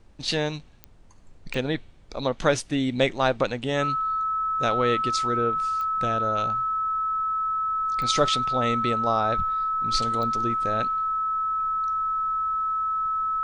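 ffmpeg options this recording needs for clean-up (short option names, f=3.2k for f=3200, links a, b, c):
-af "adeclick=t=4,bandreject=f=1.3k:w=30,agate=range=-21dB:threshold=-37dB"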